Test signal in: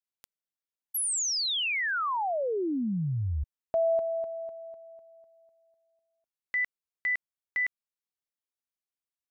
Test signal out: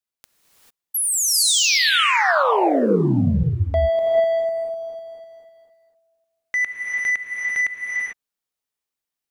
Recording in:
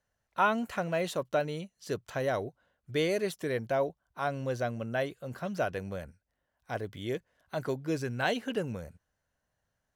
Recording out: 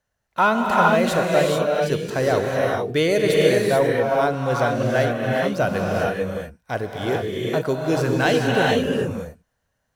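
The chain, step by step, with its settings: sample leveller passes 1; non-linear reverb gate 0.47 s rising, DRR -2 dB; gain +5.5 dB

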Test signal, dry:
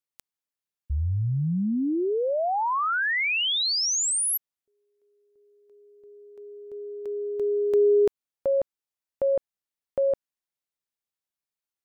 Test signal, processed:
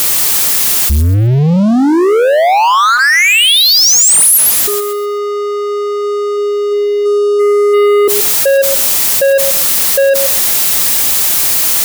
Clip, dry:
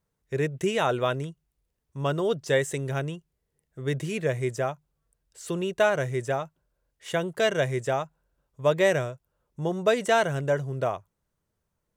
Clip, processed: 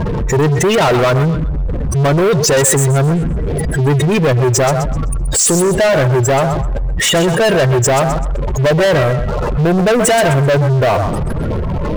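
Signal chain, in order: zero-crossing step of -28.5 dBFS; spectral gate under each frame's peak -15 dB strong; high shelf 5100 Hz +10.5 dB; notch 1500 Hz, Q 18; thinning echo 0.128 s, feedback 28%, high-pass 660 Hz, level -8 dB; sample leveller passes 5; gain +1.5 dB

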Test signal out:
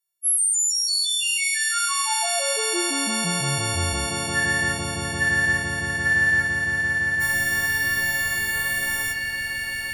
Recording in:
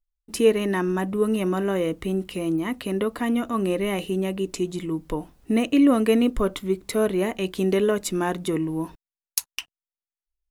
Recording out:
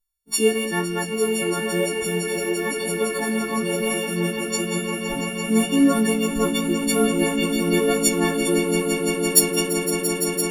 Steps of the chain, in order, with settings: frequency quantiser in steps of 4 st; flange 1 Hz, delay 9 ms, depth 5.3 ms, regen +60%; swelling echo 0.17 s, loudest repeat 8, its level -11 dB; gain +2.5 dB

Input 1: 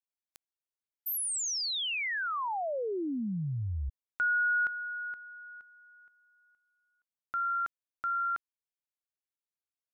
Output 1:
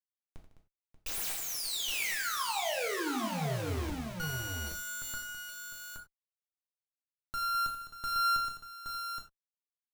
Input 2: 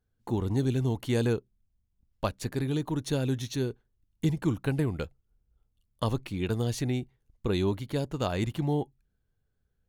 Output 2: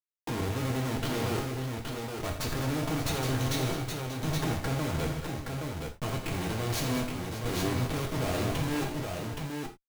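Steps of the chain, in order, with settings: tracing distortion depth 0.065 ms; Schmitt trigger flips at -42.5 dBFS; tapped delay 84/153/208/585/821 ms -10.5/-15/-12/-13/-4.5 dB; non-linear reverb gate 0.12 s falling, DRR 1 dB; gain -2.5 dB

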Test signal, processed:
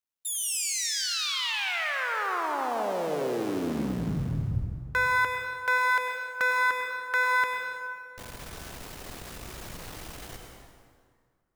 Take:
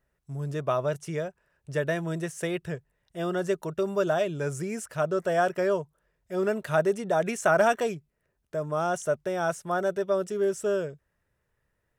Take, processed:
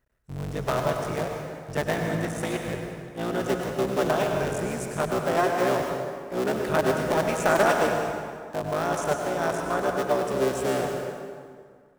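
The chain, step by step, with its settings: cycle switcher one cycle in 3, muted; plate-style reverb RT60 2 s, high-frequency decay 0.7×, pre-delay 85 ms, DRR 2 dB; gain +1.5 dB

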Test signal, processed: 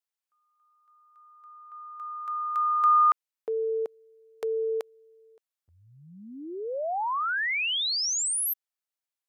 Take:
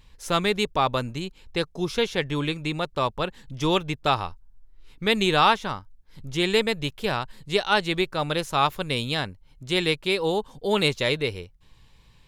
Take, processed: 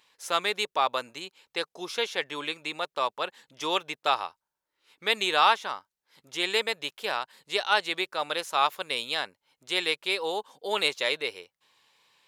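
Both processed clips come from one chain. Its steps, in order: HPF 570 Hz 12 dB/oct; gain -1.5 dB

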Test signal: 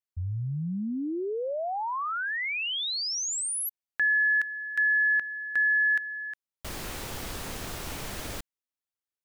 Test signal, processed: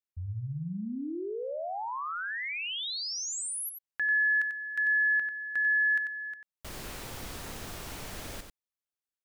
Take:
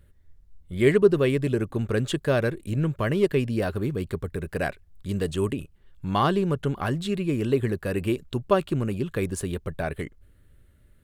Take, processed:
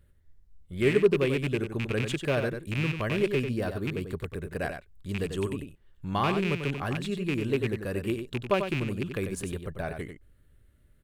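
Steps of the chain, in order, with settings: rattling part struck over -26 dBFS, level -17 dBFS; echo 93 ms -7.5 dB; gain -5 dB

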